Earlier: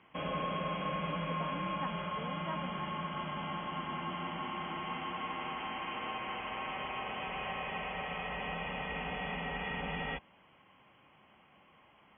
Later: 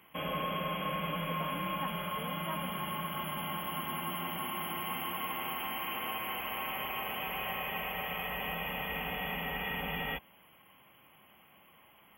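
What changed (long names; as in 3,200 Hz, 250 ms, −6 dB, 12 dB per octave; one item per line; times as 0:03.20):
background: add high-shelf EQ 3,700 Hz +10 dB
master: remove low-pass filter 4,700 Hz 24 dB per octave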